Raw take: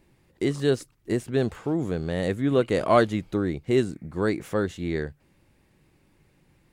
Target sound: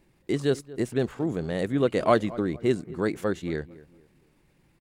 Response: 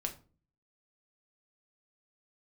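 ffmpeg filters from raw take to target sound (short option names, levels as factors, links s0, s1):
-filter_complex "[0:a]equalizer=f=91:w=4:g=-7.5,asplit=2[s0][s1];[s1]adelay=318,lowpass=f=1500:p=1,volume=0.126,asplit=2[s2][s3];[s3]adelay=318,lowpass=f=1500:p=1,volume=0.35,asplit=2[s4][s5];[s5]adelay=318,lowpass=f=1500:p=1,volume=0.35[s6];[s0][s2][s4][s6]amix=inputs=4:normalize=0,atempo=1.4,volume=0.891"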